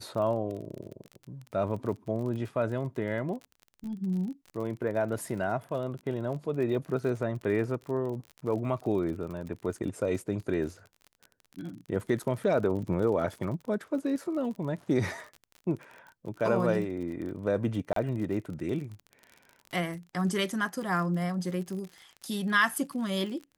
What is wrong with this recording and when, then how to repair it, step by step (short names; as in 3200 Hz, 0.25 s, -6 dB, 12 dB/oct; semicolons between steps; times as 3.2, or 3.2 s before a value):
crackle 38/s -37 dBFS
17.93–17.96 gap 33 ms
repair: de-click; interpolate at 17.93, 33 ms